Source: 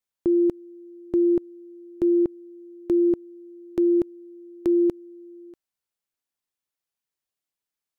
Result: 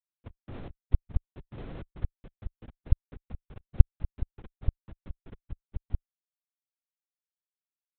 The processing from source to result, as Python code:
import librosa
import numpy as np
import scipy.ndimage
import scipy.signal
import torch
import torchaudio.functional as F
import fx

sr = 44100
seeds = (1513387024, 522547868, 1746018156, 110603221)

y = scipy.signal.sosfilt(scipy.signal.butter(4, 89.0, 'highpass', fs=sr, output='sos'), x)
y = fx.peak_eq(y, sr, hz=420.0, db=12.0, octaves=1.6)
y = fx.fixed_phaser(y, sr, hz=600.0, stages=4)
y = y + 0.68 * np.pad(y, (int(3.0 * sr / 1000.0), 0))[:len(y)]
y = fx.over_compress(y, sr, threshold_db=-19.0, ratio=-0.5)
y = fx.echo_wet_lowpass(y, sr, ms=420, feedback_pct=71, hz=860.0, wet_db=-3.0)
y = fx.schmitt(y, sr, flips_db=-24.5)
y = fx.peak_eq(y, sr, hz=130.0, db=8.5, octaves=2.3)
y = fx.lpc_vocoder(y, sr, seeds[0], excitation='whisper', order=8)
y = y * 10.0 ** (-12.0 / 20.0)